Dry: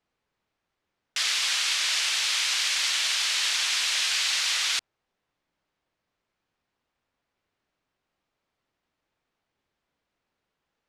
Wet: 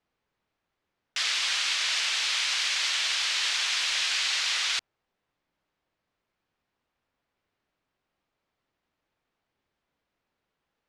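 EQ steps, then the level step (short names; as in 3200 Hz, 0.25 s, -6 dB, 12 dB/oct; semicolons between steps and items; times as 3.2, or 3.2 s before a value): air absorption 52 m; 0.0 dB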